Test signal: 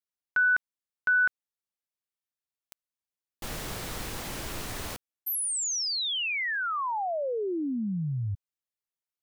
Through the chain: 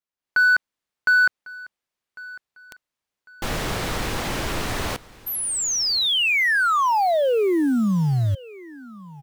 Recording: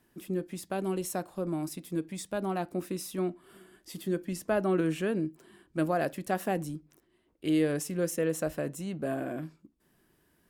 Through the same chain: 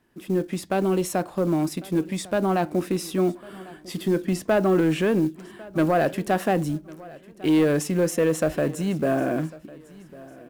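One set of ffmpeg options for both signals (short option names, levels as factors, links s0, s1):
-filter_complex "[0:a]lowpass=f=3600:p=1,lowshelf=f=320:g=-2,asplit=2[s0][s1];[s1]alimiter=level_in=1.58:limit=0.0631:level=0:latency=1:release=17,volume=0.631,volume=0.794[s2];[s0][s2]amix=inputs=2:normalize=0,dynaudnorm=f=170:g=3:m=2.99,acrusher=bits=7:mode=log:mix=0:aa=0.000001,asoftclip=type=tanh:threshold=0.316,aecho=1:1:1100|2200:0.0891|0.0276,volume=0.794"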